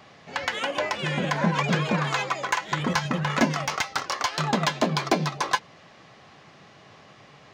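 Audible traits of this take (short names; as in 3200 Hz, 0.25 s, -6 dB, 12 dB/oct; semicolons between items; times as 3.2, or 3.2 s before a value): noise floor -52 dBFS; spectral tilt -4.5 dB/oct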